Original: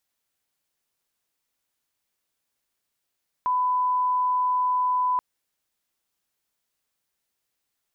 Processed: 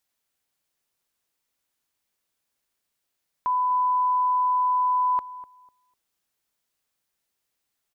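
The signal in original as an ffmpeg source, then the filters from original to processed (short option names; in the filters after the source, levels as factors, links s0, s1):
-f lavfi -i "sine=f=1000:d=1.73:r=44100,volume=-1.94dB"
-filter_complex "[0:a]asplit=2[s0][s1];[s1]adelay=249,lowpass=f=980:p=1,volume=0.2,asplit=2[s2][s3];[s3]adelay=249,lowpass=f=980:p=1,volume=0.27,asplit=2[s4][s5];[s5]adelay=249,lowpass=f=980:p=1,volume=0.27[s6];[s0][s2][s4][s6]amix=inputs=4:normalize=0"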